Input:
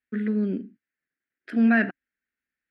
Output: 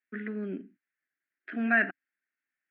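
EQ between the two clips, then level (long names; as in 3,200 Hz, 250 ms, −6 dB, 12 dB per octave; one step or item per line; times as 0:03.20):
loudspeaker in its box 150–2,700 Hz, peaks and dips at 220 Hz −6 dB, 490 Hz −10 dB, 960 Hz −6 dB
low-shelf EQ 310 Hz −9 dB
+1.0 dB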